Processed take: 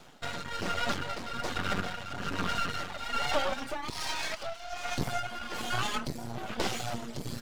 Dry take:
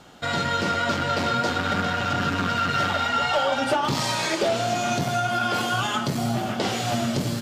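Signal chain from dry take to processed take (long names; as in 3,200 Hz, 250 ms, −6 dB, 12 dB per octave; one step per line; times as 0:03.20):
reverb reduction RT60 1.2 s
0:03.90–0:04.98: elliptic band-pass filter 680–5,800 Hz
half-wave rectification
amplitude tremolo 1.2 Hz, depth 64%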